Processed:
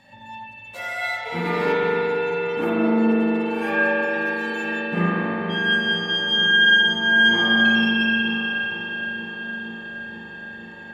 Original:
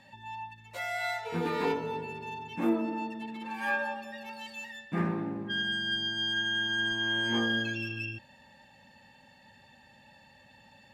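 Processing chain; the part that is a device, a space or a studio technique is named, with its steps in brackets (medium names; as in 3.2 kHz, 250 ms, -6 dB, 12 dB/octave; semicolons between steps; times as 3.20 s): dub delay into a spring reverb (filtered feedback delay 468 ms, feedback 82%, low-pass 3.1 kHz, level -11 dB; spring tank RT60 3.8 s, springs 40 ms, chirp 50 ms, DRR -7 dB); trim +2.5 dB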